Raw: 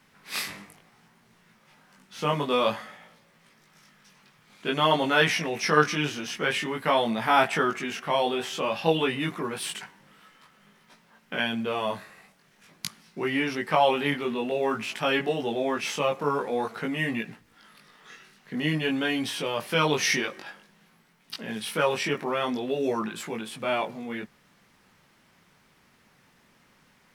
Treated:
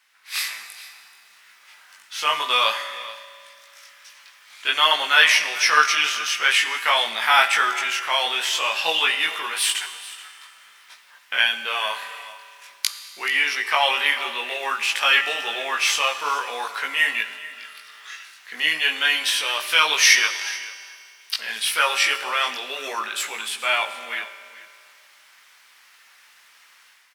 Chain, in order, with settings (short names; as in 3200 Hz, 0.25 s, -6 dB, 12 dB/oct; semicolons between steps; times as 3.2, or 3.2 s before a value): HPF 1500 Hz 12 dB/oct; AGC gain up to 10.5 dB; echo 0.431 s -17.5 dB; on a send at -10 dB: reverb RT60 2.2 s, pre-delay 5 ms; on the sum: gain +1.5 dB